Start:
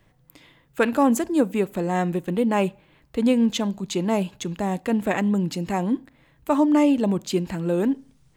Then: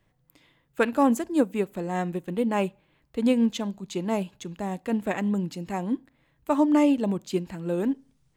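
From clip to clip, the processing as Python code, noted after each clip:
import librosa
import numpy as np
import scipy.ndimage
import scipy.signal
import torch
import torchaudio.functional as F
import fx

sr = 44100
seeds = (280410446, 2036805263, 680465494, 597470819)

y = fx.upward_expand(x, sr, threshold_db=-29.0, expansion=1.5)
y = y * 10.0 ** (-1.5 / 20.0)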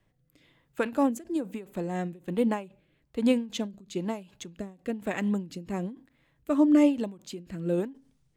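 y = fx.rotary(x, sr, hz=1.1)
y = fx.end_taper(y, sr, db_per_s=160.0)
y = y * 10.0 ** (1.0 / 20.0)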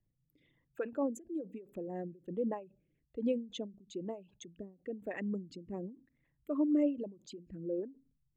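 y = fx.envelope_sharpen(x, sr, power=2.0)
y = y * 10.0 ** (-9.0 / 20.0)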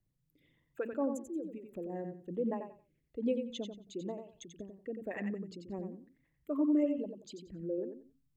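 y = fx.echo_feedback(x, sr, ms=90, feedback_pct=22, wet_db=-7.0)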